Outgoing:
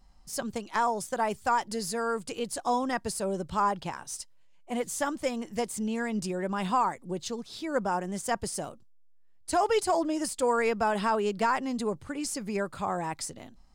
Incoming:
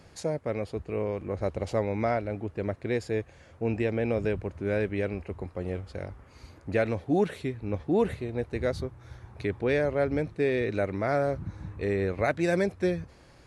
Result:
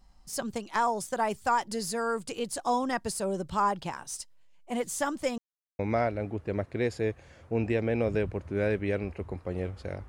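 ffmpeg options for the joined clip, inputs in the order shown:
ffmpeg -i cue0.wav -i cue1.wav -filter_complex "[0:a]apad=whole_dur=10.08,atrim=end=10.08,asplit=2[link_01][link_02];[link_01]atrim=end=5.38,asetpts=PTS-STARTPTS,afade=type=out:start_time=5.376:duration=0.004:curve=hsin[link_03];[link_02]atrim=start=5.38:end=5.79,asetpts=PTS-STARTPTS,volume=0[link_04];[1:a]atrim=start=1.89:end=6.18,asetpts=PTS-STARTPTS,afade=type=in:duration=0.004:curve=hsin[link_05];[link_03][link_04][link_05]concat=n=3:v=0:a=1" out.wav

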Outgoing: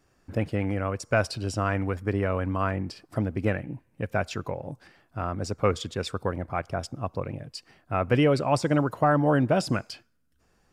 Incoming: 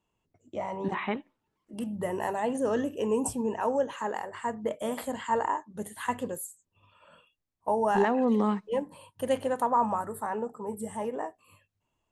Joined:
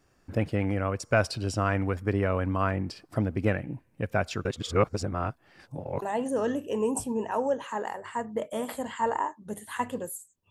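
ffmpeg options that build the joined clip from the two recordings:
ffmpeg -i cue0.wav -i cue1.wav -filter_complex "[0:a]apad=whole_dur=10.5,atrim=end=10.5,asplit=2[link_01][link_02];[link_01]atrim=end=4.452[link_03];[link_02]atrim=start=4.448:end=6.022,asetpts=PTS-STARTPTS,areverse[link_04];[1:a]atrim=start=2.308:end=6.79[link_05];[link_03][link_04]acrossfade=duration=0.004:curve1=hsin:curve2=hsin[link_06];[link_06][link_05]acrossfade=duration=0.004:curve1=hsin:curve2=hsin" out.wav

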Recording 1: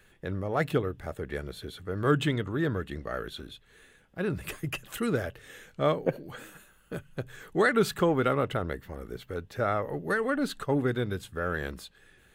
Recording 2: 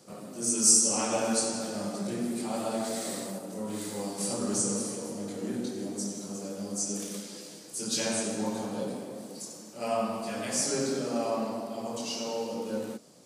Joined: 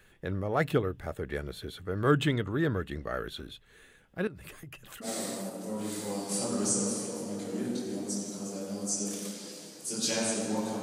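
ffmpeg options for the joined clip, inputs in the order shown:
ffmpeg -i cue0.wav -i cue1.wav -filter_complex "[0:a]asettb=1/sr,asplit=3[link_01][link_02][link_03];[link_01]atrim=end=4.274[link_04];[link_02]atrim=start=4.27:end=5.09,asetpts=PTS-STARTPTS,afade=type=in:duration=0.004:curve=qsin,afade=type=out:start_time=0.816:duration=0.004:curve=qsin,acompressor=threshold=-43dB:ratio=6:attack=3.2:release=140:knee=1:detection=peak[link_05];[link_03]atrim=start=5.086[link_06];[link_04][link_05]acrossfade=duration=0.004:curve1=hsin:curve2=qsin[link_07];[link_07][link_06]acrossfade=duration=0.004:curve1=qsin:curve2=hsin,apad=whole_dur=10.82,atrim=end=10.82,atrim=end=5.09,asetpts=PTS-STARTPTS[link_08];[1:a]atrim=start=2.9:end=8.71,asetpts=PTS-STARTPTS[link_09];[link_08][link_09]acrossfade=duration=0.08:curve1=tri:curve2=tri" out.wav

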